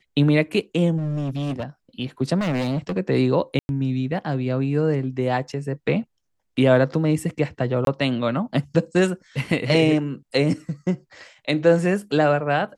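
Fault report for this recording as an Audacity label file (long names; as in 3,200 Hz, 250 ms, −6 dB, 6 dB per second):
0.970000	1.640000	clipping −22.5 dBFS
2.390000	2.980000	clipping −20.5 dBFS
3.590000	3.690000	drop-out 101 ms
7.850000	7.870000	drop-out 22 ms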